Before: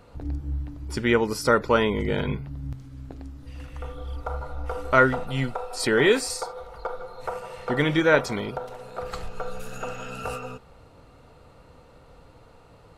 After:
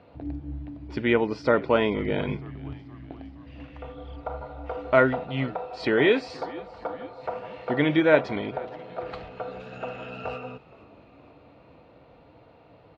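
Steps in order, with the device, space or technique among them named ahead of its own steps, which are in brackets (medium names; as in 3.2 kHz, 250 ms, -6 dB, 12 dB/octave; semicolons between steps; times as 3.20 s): frequency-shifting delay pedal into a guitar cabinet (frequency-shifting echo 470 ms, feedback 61%, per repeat -73 Hz, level -22 dB; cabinet simulation 82–3900 Hz, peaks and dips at 300 Hz +6 dB, 660 Hz +7 dB, 1.3 kHz -4 dB, 2.4 kHz +3 dB); trim -2.5 dB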